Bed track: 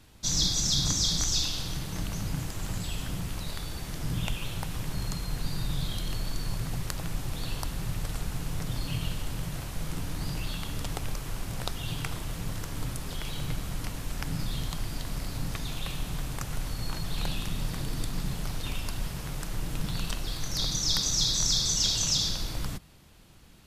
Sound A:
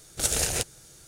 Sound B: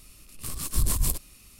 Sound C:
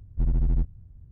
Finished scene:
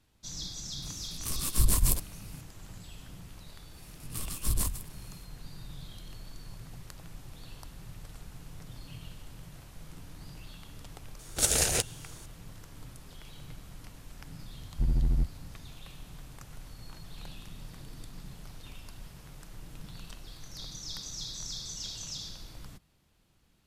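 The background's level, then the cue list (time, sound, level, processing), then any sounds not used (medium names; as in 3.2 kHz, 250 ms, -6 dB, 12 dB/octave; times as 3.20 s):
bed track -13.5 dB
0.82 s: add B
3.71 s: add B -2.5 dB, fades 0.10 s + endings held to a fixed fall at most 100 dB/s
11.19 s: add A
14.61 s: add C -3 dB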